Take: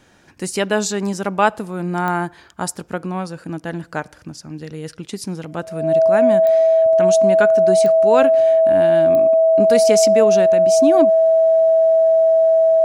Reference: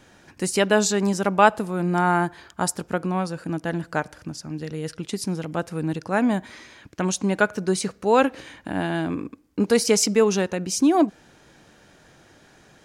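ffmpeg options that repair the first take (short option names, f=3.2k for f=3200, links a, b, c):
-af "adeclick=t=4,bandreject=f=650:w=30"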